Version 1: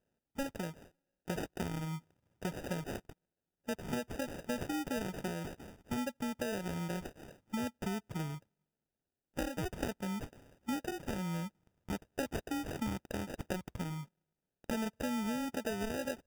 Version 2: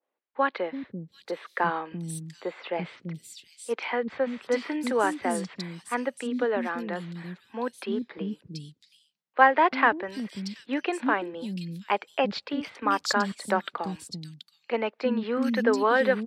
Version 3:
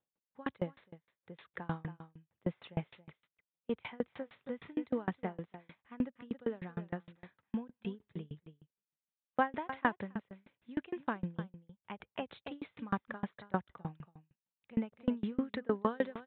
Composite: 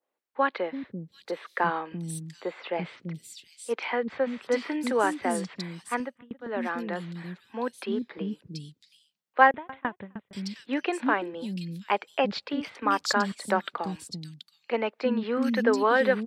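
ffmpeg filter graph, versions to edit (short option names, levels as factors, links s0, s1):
-filter_complex "[2:a]asplit=2[s0][s1];[1:a]asplit=3[s2][s3][s4];[s2]atrim=end=6.18[s5];[s0]atrim=start=5.94:end=6.63[s6];[s3]atrim=start=6.39:end=9.512[s7];[s1]atrim=start=9.508:end=10.332[s8];[s4]atrim=start=10.328[s9];[s5][s6]acrossfade=d=0.24:c1=tri:c2=tri[s10];[s10][s7]acrossfade=d=0.24:c1=tri:c2=tri[s11];[s11][s8]acrossfade=d=0.004:c1=hsin:c2=hsin[s12];[s12][s9]acrossfade=d=0.004:c1=hsin:c2=hsin"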